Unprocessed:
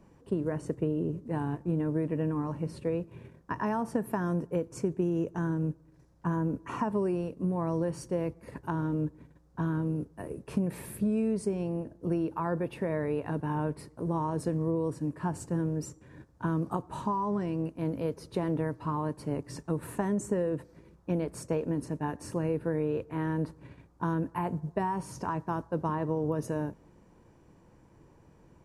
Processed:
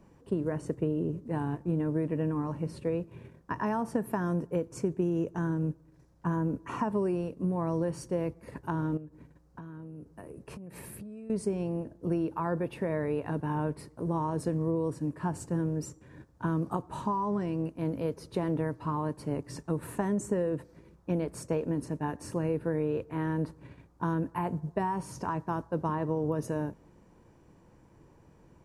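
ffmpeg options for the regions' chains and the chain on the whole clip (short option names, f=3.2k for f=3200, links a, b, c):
-filter_complex "[0:a]asettb=1/sr,asplit=3[a][b][c];[a]atrim=end=8.974[d];[b]atrim=start=8.97:end=11.3,asetpts=PTS-STARTPTS,afade=t=in:d=0.004:c=qsin,afade=t=out:st=2.326:d=0.004:c=qsin,bandreject=f=3.5k:w=13,acompressor=threshold=-40dB:ratio=16:attack=3.2:release=140:knee=1:detection=peak[e];[c]atrim=start=11.296[f];[d][e]acrossfade=d=0.004:c1=hsin:c2=qsin[g];[g][f]acrossfade=d=0.004:c1=qsin:c2=hsin"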